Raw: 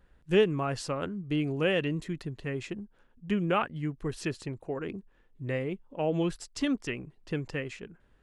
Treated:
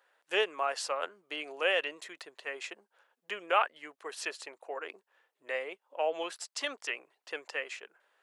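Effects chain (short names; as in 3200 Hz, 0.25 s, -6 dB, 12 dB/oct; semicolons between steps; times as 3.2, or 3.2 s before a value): HPF 570 Hz 24 dB/oct; gain +2.5 dB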